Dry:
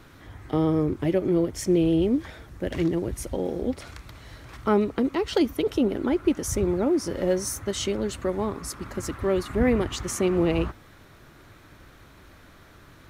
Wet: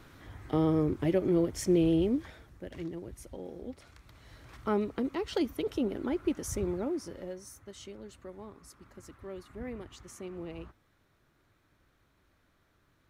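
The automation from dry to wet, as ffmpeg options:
-af "volume=1.33,afade=t=out:st=1.89:d=0.79:silence=0.298538,afade=t=in:st=3.94:d=0.51:silence=0.473151,afade=t=out:st=6.66:d=0.69:silence=0.281838"

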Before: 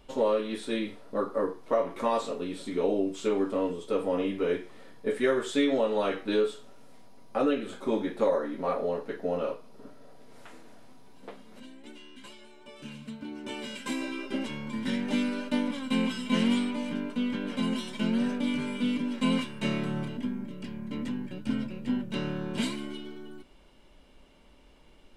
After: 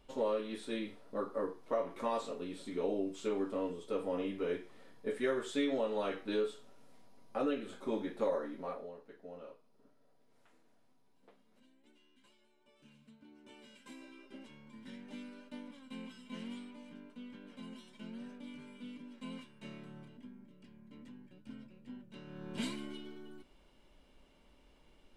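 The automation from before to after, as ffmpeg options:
-af "volume=1.68,afade=t=out:st=8.45:d=0.47:silence=0.266073,afade=t=in:st=22.26:d=0.43:silence=0.237137"

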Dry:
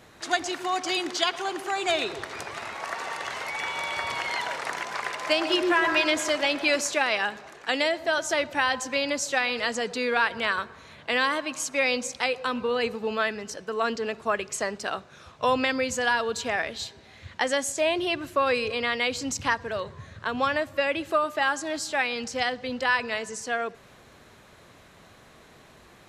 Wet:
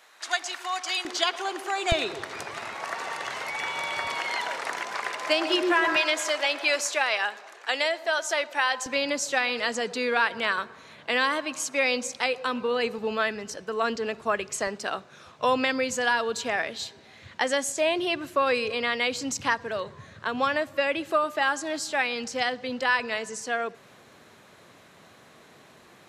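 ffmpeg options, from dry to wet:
-af "asetnsamples=n=441:p=0,asendcmd='1.05 highpass f 330;1.92 highpass f 90;4.07 highpass f 200;5.96 highpass f 520;8.86 highpass f 150;12.98 highpass f 57;14.67 highpass f 130',highpass=860"

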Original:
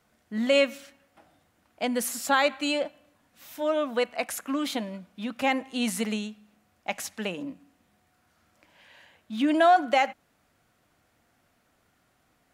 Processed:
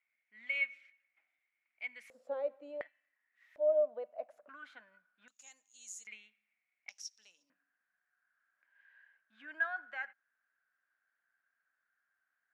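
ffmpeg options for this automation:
-af "asetnsamples=n=441:p=0,asendcmd='2.1 bandpass f 520;2.81 bandpass f 1900;3.56 bandpass f 600;4.49 bandpass f 1500;5.28 bandpass f 6800;6.07 bandpass f 2200;6.89 bandpass f 5600;7.5 bandpass f 1600',bandpass=f=2200:t=q:w=15:csg=0"

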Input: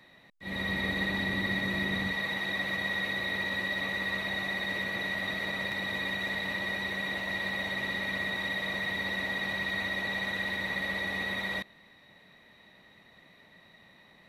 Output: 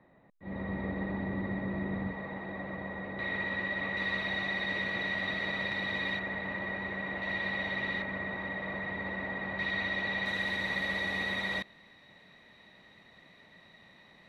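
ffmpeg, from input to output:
-af "asetnsamples=n=441:p=0,asendcmd='3.19 lowpass f 2300;3.97 lowpass f 4300;6.19 lowpass f 1800;7.22 lowpass f 3200;8.02 lowpass f 1600;9.59 lowpass f 3900;10.26 lowpass f 8600',lowpass=1000"

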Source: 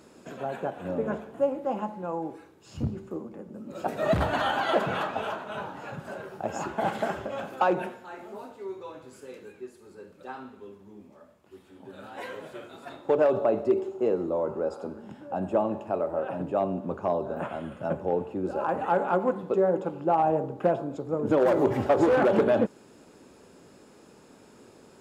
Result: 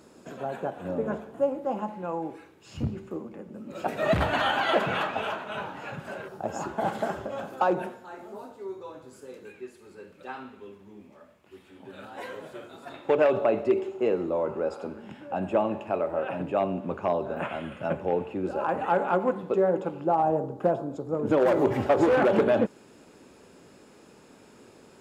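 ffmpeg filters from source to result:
-af "asetnsamples=n=441:p=0,asendcmd='1.88 equalizer g 6;6.28 equalizer g -4.5;9.45 equalizer g 7;12.05 equalizer g -1.5;12.94 equalizer g 10;18.49 equalizer g 4;20.07 equalizer g -6;21.15 equalizer g 3',equalizer=f=2400:t=o:w=1.1:g=-2"

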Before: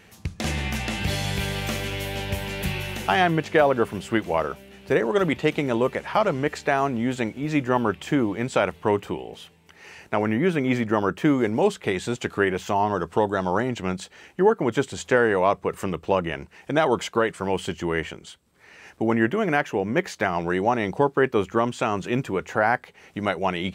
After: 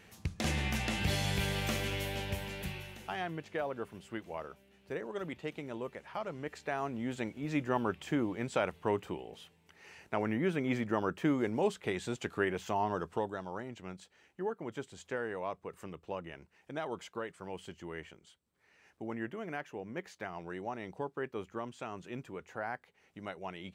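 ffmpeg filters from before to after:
-af "volume=1.26,afade=t=out:st=1.92:d=1.05:silence=0.251189,afade=t=in:st=6.26:d=1.22:silence=0.398107,afade=t=out:st=12.96:d=0.5:silence=0.398107"

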